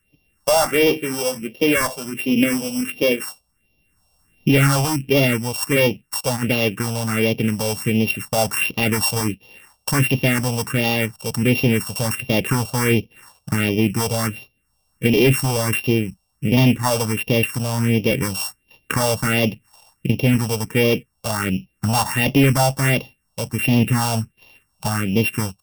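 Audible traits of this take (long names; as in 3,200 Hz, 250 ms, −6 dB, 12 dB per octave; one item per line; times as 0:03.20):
a buzz of ramps at a fixed pitch in blocks of 16 samples
phaser sweep stages 4, 1.4 Hz, lowest notch 310–1,500 Hz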